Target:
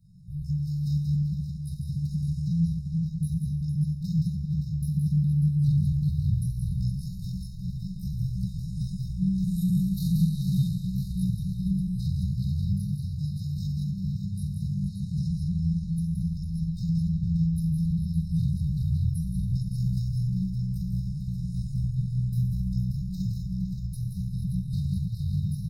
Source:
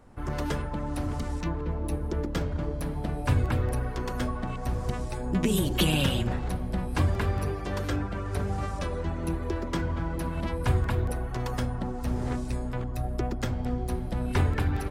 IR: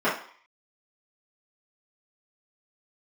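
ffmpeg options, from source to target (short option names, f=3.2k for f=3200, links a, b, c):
-filter_complex "[0:a]equalizer=f=125:t=o:w=1:g=7,equalizer=f=250:t=o:w=1:g=-4,equalizer=f=500:t=o:w=1:g=-5,equalizer=f=4k:t=o:w=1:g=-7,equalizer=f=8k:t=o:w=1:g=-5[a];[1:a]atrim=start_sample=2205[b];[a][b]afir=irnorm=-1:irlink=0,acrossover=split=380[c][d];[c]dynaudnorm=f=230:g=13:m=4.5dB[e];[e][d]amix=inputs=2:normalize=0,asoftclip=type=tanh:threshold=-9dB,acompressor=threshold=-17dB:ratio=10,lowshelf=f=120:g=-6.5,bandreject=f=50:t=h:w=6,bandreject=f=100:t=h:w=6,bandreject=f=150:t=h:w=6,bandreject=f=200:t=h:w=6,bandreject=f=250:t=h:w=6,bandreject=f=300:t=h:w=6,bandreject=f=350:t=h:w=6,bandreject=f=400:t=h:w=6,bandreject=f=450:t=h:w=6,aecho=1:1:100|115|266|334|586:0.531|0.251|0.266|0.376|0.335,atempo=0.58,afftfilt=real='re*(1-between(b*sr/4096,200,3700))':imag='im*(1-between(b*sr/4096,200,3700))':win_size=4096:overlap=0.75"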